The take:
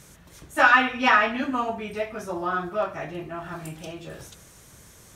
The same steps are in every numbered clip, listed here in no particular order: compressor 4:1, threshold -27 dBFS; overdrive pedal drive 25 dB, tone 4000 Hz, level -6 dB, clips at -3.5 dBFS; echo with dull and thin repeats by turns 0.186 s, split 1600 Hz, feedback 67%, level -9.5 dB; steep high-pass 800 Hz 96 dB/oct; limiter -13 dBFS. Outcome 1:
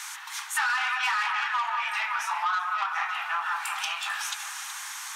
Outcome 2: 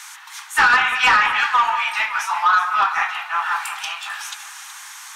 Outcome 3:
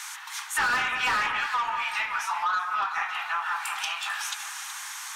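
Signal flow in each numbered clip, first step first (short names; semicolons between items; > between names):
limiter > echo with dull and thin repeats by turns > overdrive pedal > steep high-pass > compressor; steep high-pass > compressor > limiter > overdrive pedal > echo with dull and thin repeats by turns; steep high-pass > overdrive pedal > echo with dull and thin repeats by turns > compressor > limiter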